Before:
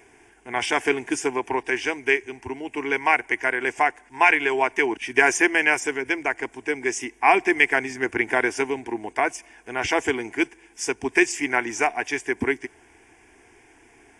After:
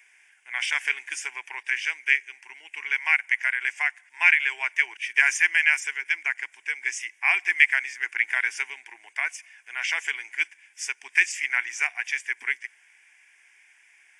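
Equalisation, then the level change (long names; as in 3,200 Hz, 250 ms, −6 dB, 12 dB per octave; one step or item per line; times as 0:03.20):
high-pass with resonance 2,000 Hz, resonance Q 1.9
−4.0 dB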